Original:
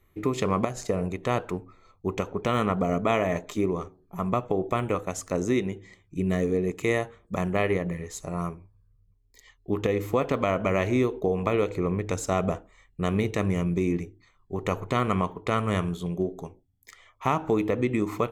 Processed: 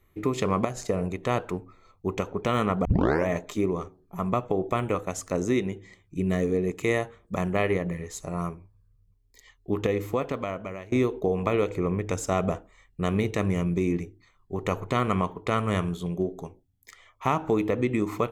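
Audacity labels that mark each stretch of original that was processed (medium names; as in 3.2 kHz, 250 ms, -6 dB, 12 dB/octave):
2.850000	2.850000	tape start 0.42 s
9.860000	10.920000	fade out, to -22 dB
11.670000	12.320000	band-stop 4.1 kHz, Q 8.6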